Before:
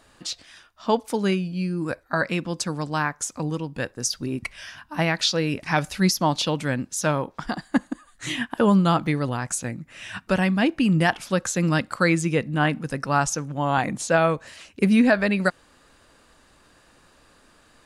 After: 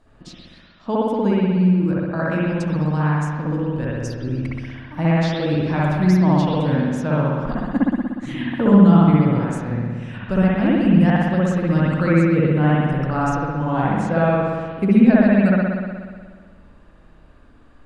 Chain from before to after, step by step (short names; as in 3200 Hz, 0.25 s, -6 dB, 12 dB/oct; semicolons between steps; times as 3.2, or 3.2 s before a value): tilt -3 dB/oct; spring tank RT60 1.7 s, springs 60 ms, chirp 80 ms, DRR -7 dB; gain -7 dB